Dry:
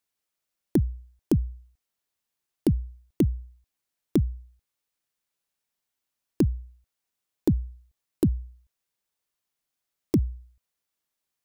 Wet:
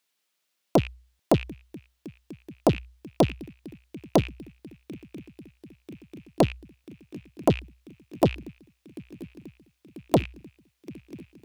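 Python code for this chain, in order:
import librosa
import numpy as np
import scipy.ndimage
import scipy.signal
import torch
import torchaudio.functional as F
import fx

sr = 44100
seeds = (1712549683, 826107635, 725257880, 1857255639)

y = fx.rattle_buzz(x, sr, strikes_db=-26.0, level_db=-32.0)
y = scipy.signal.sosfilt(scipy.signal.butter(2, 150.0, 'highpass', fs=sr, output='sos'), y)
y = fx.peak_eq(y, sr, hz=3100.0, db=6.0, octaves=1.7)
y = fx.echo_swing(y, sr, ms=990, ratio=3, feedback_pct=73, wet_db=-23.0)
y = fx.doppler_dist(y, sr, depth_ms=0.93)
y = y * 10.0 ** (5.0 / 20.0)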